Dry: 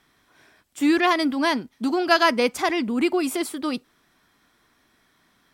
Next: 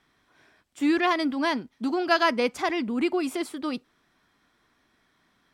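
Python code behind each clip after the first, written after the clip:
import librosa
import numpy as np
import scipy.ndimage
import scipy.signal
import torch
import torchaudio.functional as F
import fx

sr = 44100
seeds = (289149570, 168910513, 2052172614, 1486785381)

y = fx.high_shelf(x, sr, hz=8900.0, db=-11.5)
y = y * librosa.db_to_amplitude(-3.5)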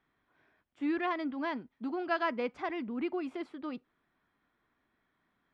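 y = scipy.signal.sosfilt(scipy.signal.butter(2, 2500.0, 'lowpass', fs=sr, output='sos'), x)
y = y * librosa.db_to_amplitude(-9.0)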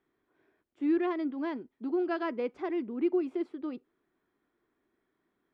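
y = fx.peak_eq(x, sr, hz=370.0, db=13.5, octaves=0.91)
y = y * librosa.db_to_amplitude(-5.5)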